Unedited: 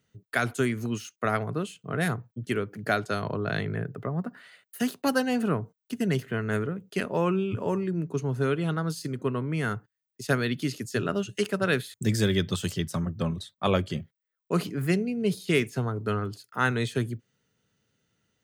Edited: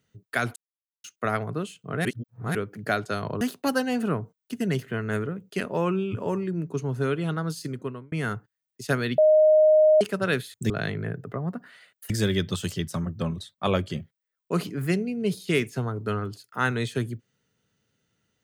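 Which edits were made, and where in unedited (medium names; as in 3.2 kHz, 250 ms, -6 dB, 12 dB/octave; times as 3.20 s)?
0.56–1.04 s: mute
2.05–2.55 s: reverse
3.41–4.81 s: move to 12.10 s
9.10–9.52 s: fade out
10.58–11.41 s: bleep 619 Hz -13.5 dBFS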